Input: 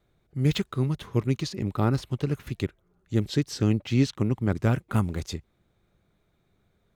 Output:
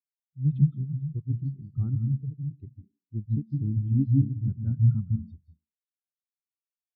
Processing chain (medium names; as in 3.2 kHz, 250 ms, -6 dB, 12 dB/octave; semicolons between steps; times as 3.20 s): knee-point frequency compression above 4 kHz 1.5:1; dynamic bell 500 Hz, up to -4 dB, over -37 dBFS, Q 1; on a send at -6.5 dB: reverberation RT60 0.70 s, pre-delay 152 ms; on the sum: spectral contrast expander 2.5:1